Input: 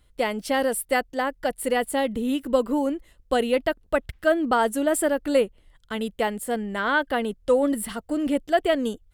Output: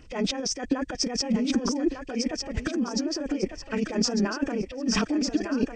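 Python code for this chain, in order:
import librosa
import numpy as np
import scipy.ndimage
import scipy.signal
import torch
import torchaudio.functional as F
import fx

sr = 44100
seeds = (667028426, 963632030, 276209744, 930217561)

y = fx.freq_compress(x, sr, knee_hz=1700.0, ratio=1.5)
y = fx.over_compress(y, sr, threshold_db=-34.0, ratio=-1.0)
y = fx.stretch_grains(y, sr, factor=0.63, grain_ms=55.0)
y = fx.peak_eq(y, sr, hz=290.0, db=8.5, octaves=0.95)
y = fx.echo_thinned(y, sr, ms=1200, feedback_pct=33, hz=540.0, wet_db=-5.0)
y = F.gain(torch.from_numpy(y), 3.0).numpy()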